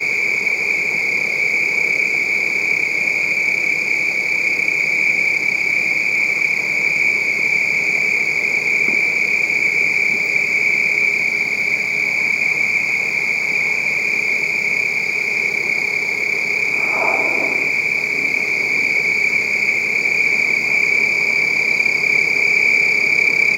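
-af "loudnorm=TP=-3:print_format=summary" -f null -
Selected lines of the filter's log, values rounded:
Input Integrated:    -14.4 LUFS
Input True Peak:      -3.9 dBTP
Input LRA:             2.8 LU
Input Threshold:     -24.4 LUFS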